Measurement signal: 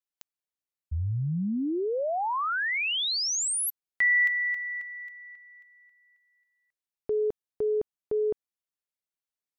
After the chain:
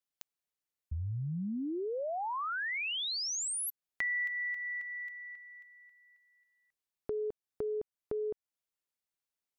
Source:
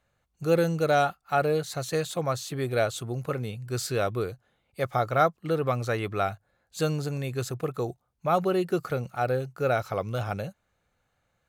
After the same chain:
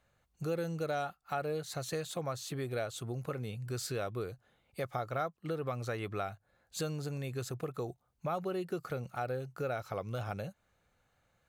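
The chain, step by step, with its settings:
downward compressor 2.5 to 1, threshold −38 dBFS

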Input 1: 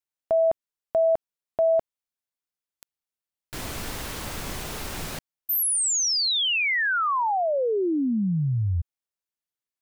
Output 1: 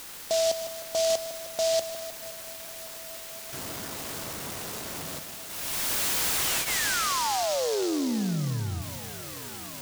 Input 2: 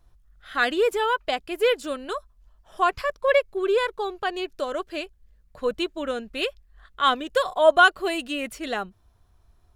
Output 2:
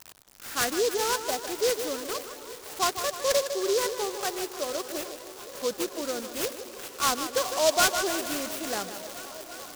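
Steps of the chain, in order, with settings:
spike at every zero crossing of −21.5 dBFS
echo with a time of its own for lows and highs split 2,600 Hz, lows 154 ms, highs 419 ms, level −10.5 dB
soft clipping −12 dBFS
band-pass filter 110–7,900 Hz
notch filter 2,300 Hz, Q 11
feedback echo with a long and a short gap by turns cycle 856 ms, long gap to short 1.5 to 1, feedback 79%, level −20 dB
short delay modulated by noise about 4,900 Hz, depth 0.1 ms
level −3.5 dB

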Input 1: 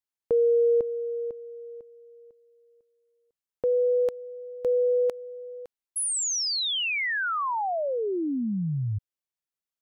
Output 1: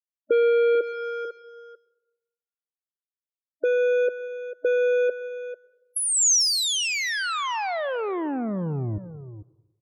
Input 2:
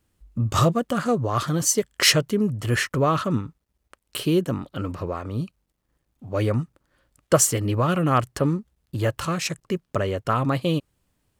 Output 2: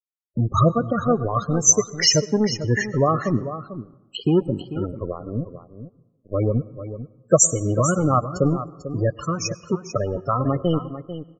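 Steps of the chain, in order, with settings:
parametric band 6,400 Hz +7.5 dB 0.85 octaves
in parallel at +2.5 dB: downward compressor 16 to 1, threshold −32 dBFS
on the sum: dead-zone distortion −26 dBFS
spectral peaks only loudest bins 16
on a send: single-tap delay 444 ms −12 dB
on the sum: dense smooth reverb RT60 1 s, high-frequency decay 0.5×, pre-delay 90 ms, DRR 19 dB
level +3.5 dB

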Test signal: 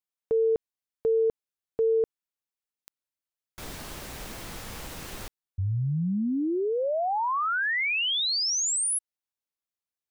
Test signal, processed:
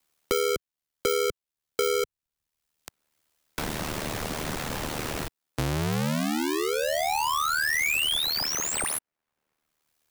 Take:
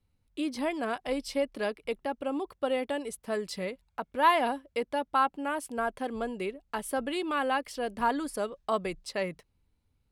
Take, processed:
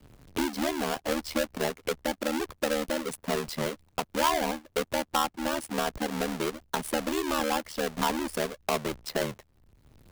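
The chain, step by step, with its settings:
each half-wave held at its own peak
ring modulation 38 Hz
multiband upward and downward compressor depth 70%

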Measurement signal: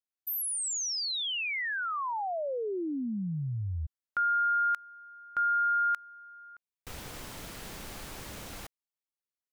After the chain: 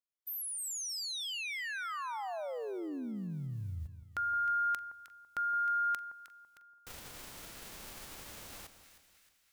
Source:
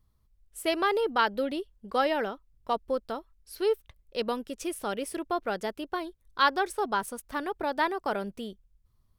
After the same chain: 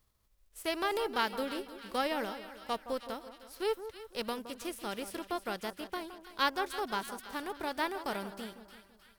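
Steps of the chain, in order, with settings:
spectral envelope flattened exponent 0.6
echo with a time of its own for lows and highs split 1,400 Hz, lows 167 ms, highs 311 ms, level −11.5 dB
level −6.5 dB

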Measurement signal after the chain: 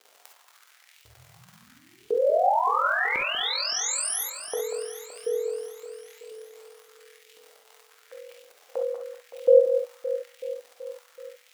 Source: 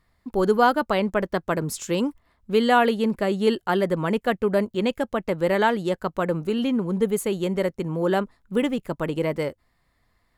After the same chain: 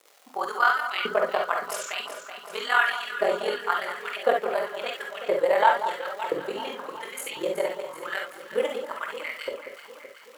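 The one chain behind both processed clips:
surface crackle 280 per second −37 dBFS
auto-filter high-pass saw up 0.95 Hz 430–2,900 Hz
ring modulation 21 Hz
delay that swaps between a low-pass and a high-pass 189 ms, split 1,300 Hz, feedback 77%, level −9 dB
reverb whose tail is shaped and stops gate 80 ms rising, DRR 2.5 dB
level −2 dB

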